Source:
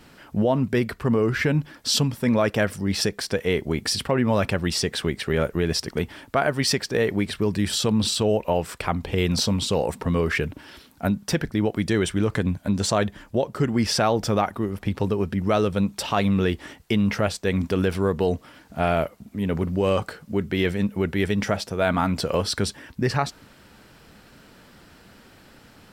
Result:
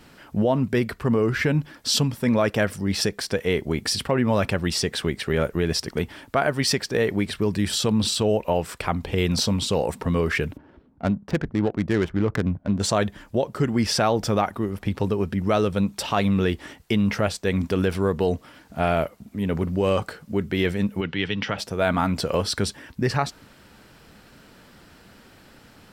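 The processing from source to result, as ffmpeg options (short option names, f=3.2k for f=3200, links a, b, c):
-filter_complex "[0:a]asplit=3[a][b][c];[a]afade=t=out:st=10.56:d=0.02[d];[b]adynamicsmooth=sensitivity=2:basefreq=620,afade=t=in:st=10.56:d=0.02,afade=t=out:st=12.79:d=0.02[e];[c]afade=t=in:st=12.79:d=0.02[f];[d][e][f]amix=inputs=3:normalize=0,asplit=3[g][h][i];[g]afade=t=out:st=21:d=0.02[j];[h]highpass=f=110:w=0.5412,highpass=f=110:w=1.3066,equalizer=f=210:t=q:w=4:g=-6,equalizer=f=380:t=q:w=4:g=-7,equalizer=f=640:t=q:w=4:g=-9,equalizer=f=3k:t=q:w=4:g=9,lowpass=f=4.9k:w=0.5412,lowpass=f=4.9k:w=1.3066,afade=t=in:st=21:d=0.02,afade=t=out:st=21.57:d=0.02[k];[i]afade=t=in:st=21.57:d=0.02[l];[j][k][l]amix=inputs=3:normalize=0"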